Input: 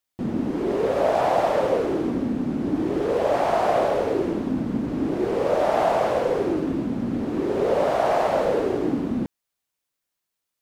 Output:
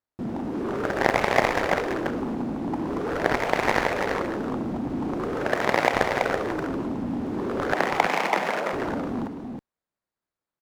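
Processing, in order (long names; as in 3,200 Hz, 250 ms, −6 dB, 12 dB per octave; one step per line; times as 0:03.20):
running median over 15 samples
harmonic generator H 3 −7 dB, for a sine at −9 dBFS
0:05.46–0:05.94: high-pass filter 120 Hz
0:07.73–0:08.73: frequency shifter +140 Hz
single-tap delay 331 ms −5.5 dB
boost into a limiter +9 dB
level −1 dB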